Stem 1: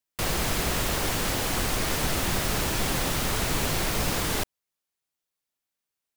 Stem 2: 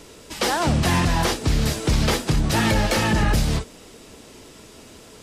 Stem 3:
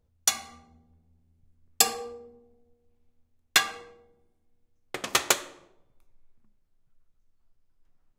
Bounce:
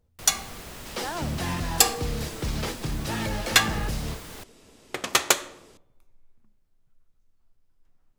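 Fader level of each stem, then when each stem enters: -14.5 dB, -10.0 dB, +2.5 dB; 0.00 s, 0.55 s, 0.00 s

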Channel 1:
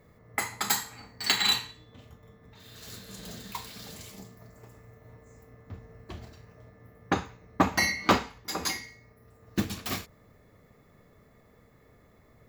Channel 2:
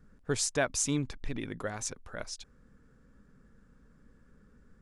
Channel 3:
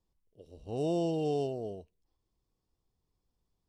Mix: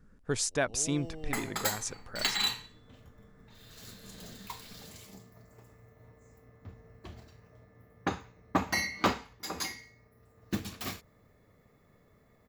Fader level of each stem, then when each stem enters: -5.0 dB, -0.5 dB, -13.5 dB; 0.95 s, 0.00 s, 0.00 s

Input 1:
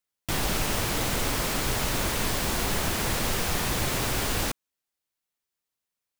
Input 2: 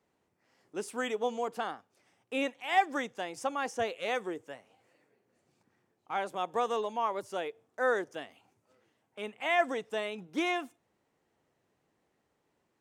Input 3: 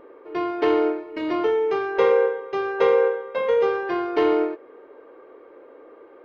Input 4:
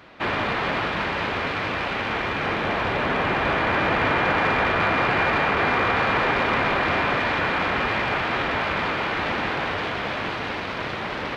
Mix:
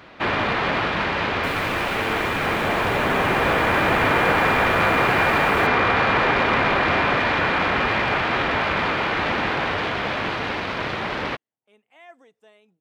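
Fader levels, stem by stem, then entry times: -13.0 dB, -19.5 dB, -14.0 dB, +2.5 dB; 1.15 s, 2.50 s, 1.35 s, 0.00 s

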